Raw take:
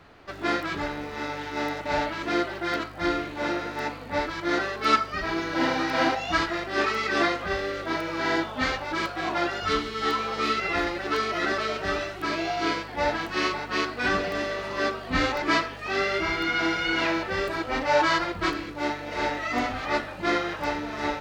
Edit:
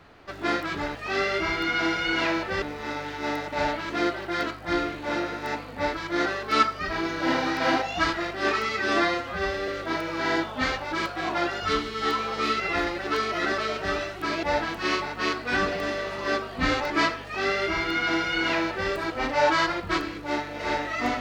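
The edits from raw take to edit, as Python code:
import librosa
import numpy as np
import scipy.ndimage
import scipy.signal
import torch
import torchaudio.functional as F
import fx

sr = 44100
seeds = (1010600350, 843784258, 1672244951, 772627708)

y = fx.edit(x, sr, fx.stretch_span(start_s=7.02, length_s=0.66, factor=1.5),
    fx.cut(start_s=12.43, length_s=0.52),
    fx.duplicate(start_s=15.75, length_s=1.67, to_s=0.95), tone=tone)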